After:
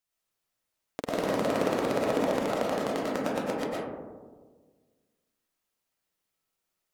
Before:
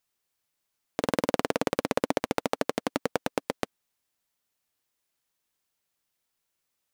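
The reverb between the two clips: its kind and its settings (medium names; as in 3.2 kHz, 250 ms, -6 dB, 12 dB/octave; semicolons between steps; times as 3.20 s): algorithmic reverb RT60 1.5 s, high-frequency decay 0.25×, pre-delay 75 ms, DRR -6 dB; trim -7 dB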